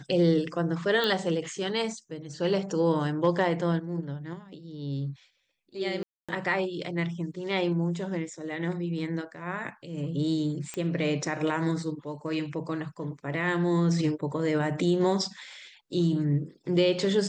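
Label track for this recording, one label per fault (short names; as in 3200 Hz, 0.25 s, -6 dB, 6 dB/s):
1.040000	1.040000	pop -15 dBFS
6.030000	6.290000	gap 0.256 s
10.740000	10.740000	pop -19 dBFS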